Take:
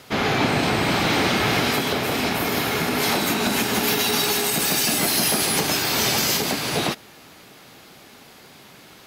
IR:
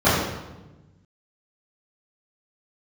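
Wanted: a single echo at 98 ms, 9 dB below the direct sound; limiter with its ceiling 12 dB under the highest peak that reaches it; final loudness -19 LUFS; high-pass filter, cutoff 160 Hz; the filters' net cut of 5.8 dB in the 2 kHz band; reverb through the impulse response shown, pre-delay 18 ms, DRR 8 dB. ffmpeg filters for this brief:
-filter_complex "[0:a]highpass=160,equalizer=f=2000:t=o:g=-7.5,alimiter=limit=0.0841:level=0:latency=1,aecho=1:1:98:0.355,asplit=2[s0][s1];[1:a]atrim=start_sample=2205,adelay=18[s2];[s1][s2]afir=irnorm=-1:irlink=0,volume=0.0282[s3];[s0][s3]amix=inputs=2:normalize=0,volume=2.82"

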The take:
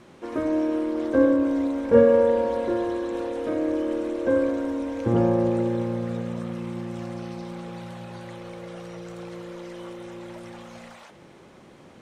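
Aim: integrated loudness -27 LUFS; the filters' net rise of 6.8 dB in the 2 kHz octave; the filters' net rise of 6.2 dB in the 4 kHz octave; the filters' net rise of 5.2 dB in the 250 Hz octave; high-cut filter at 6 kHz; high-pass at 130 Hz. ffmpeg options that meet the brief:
-af "highpass=130,lowpass=6000,equalizer=f=250:t=o:g=6.5,equalizer=f=2000:t=o:g=8,equalizer=f=4000:t=o:g=5.5,volume=0.473"

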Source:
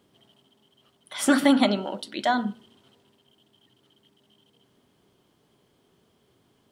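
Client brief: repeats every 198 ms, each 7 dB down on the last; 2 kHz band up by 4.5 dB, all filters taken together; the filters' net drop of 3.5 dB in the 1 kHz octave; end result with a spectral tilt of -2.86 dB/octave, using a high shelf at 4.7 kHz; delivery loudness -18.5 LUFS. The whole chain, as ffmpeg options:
-af "equalizer=f=1000:t=o:g=-7.5,equalizer=f=2000:t=o:g=8,highshelf=f=4700:g=5,aecho=1:1:198|396|594|792|990:0.447|0.201|0.0905|0.0407|0.0183,volume=1.58"

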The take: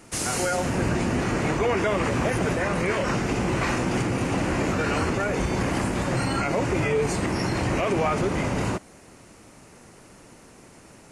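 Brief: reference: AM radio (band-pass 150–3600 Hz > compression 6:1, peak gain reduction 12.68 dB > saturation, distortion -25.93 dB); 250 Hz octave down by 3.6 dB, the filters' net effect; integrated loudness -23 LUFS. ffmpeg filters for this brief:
-af "highpass=150,lowpass=3600,equalizer=f=250:t=o:g=-4,acompressor=threshold=0.02:ratio=6,asoftclip=threshold=0.0531,volume=5.31"

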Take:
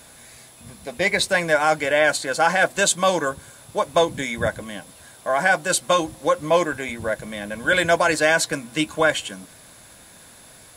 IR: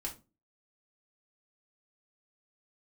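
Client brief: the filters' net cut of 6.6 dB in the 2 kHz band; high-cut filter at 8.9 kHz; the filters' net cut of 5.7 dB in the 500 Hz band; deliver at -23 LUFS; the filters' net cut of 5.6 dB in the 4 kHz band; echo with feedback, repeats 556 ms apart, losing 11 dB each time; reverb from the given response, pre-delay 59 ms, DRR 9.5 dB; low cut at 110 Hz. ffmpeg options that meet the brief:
-filter_complex "[0:a]highpass=110,lowpass=8900,equalizer=f=500:t=o:g=-6.5,equalizer=f=2000:t=o:g=-8,equalizer=f=4000:t=o:g=-4,aecho=1:1:556|1112|1668:0.282|0.0789|0.0221,asplit=2[s0][s1];[1:a]atrim=start_sample=2205,adelay=59[s2];[s1][s2]afir=irnorm=-1:irlink=0,volume=0.355[s3];[s0][s3]amix=inputs=2:normalize=0,volume=1.26"

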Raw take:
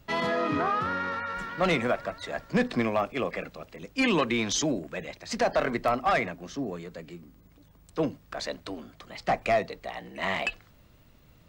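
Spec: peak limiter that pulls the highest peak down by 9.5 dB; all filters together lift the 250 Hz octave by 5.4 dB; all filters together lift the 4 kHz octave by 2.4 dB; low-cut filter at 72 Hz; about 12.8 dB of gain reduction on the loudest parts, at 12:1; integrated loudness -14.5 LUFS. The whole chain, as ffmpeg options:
-af "highpass=72,equalizer=f=250:t=o:g=6.5,equalizer=f=4000:t=o:g=3,acompressor=threshold=0.0355:ratio=12,volume=14.1,alimiter=limit=0.596:level=0:latency=1"

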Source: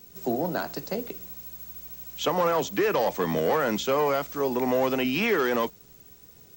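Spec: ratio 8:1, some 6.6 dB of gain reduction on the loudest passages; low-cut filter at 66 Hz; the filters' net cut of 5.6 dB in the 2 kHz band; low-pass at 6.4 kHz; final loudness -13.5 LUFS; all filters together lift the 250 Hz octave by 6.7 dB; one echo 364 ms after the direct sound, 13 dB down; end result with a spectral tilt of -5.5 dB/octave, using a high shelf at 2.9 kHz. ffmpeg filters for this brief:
-af "highpass=66,lowpass=6400,equalizer=f=250:t=o:g=8,equalizer=f=2000:t=o:g=-6,highshelf=f=2900:g=-3.5,acompressor=threshold=0.0631:ratio=8,aecho=1:1:364:0.224,volume=5.96"

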